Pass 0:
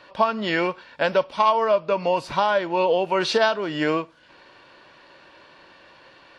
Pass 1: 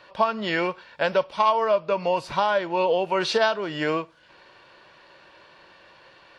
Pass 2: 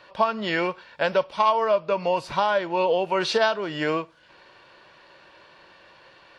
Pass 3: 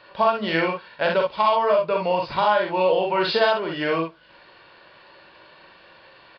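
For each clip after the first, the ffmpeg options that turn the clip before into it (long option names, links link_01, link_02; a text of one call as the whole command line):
ffmpeg -i in.wav -af "equalizer=frequency=270:width=6.3:gain=-10.5,volume=-1.5dB" out.wav
ffmpeg -i in.wav -af anull out.wav
ffmpeg -i in.wav -af "aecho=1:1:43|61:0.596|0.596,aresample=11025,aresample=44100" out.wav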